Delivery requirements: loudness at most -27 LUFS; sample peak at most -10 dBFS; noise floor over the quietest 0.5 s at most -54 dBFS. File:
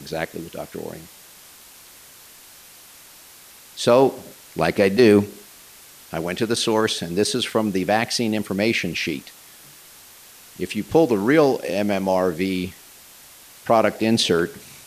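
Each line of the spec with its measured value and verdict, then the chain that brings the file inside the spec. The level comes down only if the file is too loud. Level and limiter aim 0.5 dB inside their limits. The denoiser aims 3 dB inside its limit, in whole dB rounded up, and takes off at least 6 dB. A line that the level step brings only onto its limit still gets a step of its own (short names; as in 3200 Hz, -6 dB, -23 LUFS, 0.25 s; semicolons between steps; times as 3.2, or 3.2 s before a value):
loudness -20.5 LUFS: fail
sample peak -3.5 dBFS: fail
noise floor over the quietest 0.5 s -46 dBFS: fail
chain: denoiser 6 dB, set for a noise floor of -46 dBFS; gain -7 dB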